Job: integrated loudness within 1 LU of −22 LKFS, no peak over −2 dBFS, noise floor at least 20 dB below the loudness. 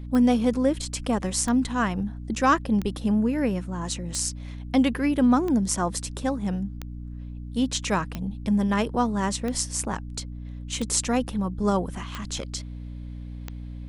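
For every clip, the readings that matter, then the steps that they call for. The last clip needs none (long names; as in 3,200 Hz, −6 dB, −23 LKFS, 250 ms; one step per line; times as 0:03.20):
number of clicks 11; mains hum 60 Hz; hum harmonics up to 300 Hz; level of the hum −34 dBFS; integrated loudness −25.5 LKFS; sample peak −6.5 dBFS; target loudness −22.0 LKFS
→ click removal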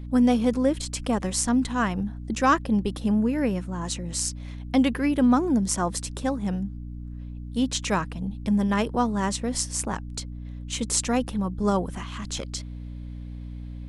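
number of clicks 0; mains hum 60 Hz; hum harmonics up to 300 Hz; level of the hum −34 dBFS
→ mains-hum notches 60/120/180/240/300 Hz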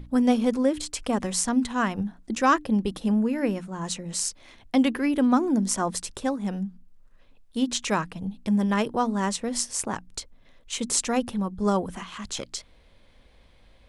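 mains hum none found; integrated loudness −26.0 LKFS; sample peak −6.5 dBFS; target loudness −22.0 LKFS
→ level +4 dB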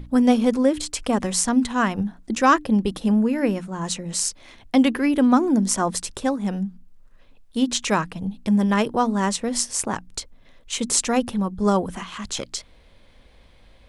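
integrated loudness −22.0 LKFS; sample peak −2.5 dBFS; background noise floor −52 dBFS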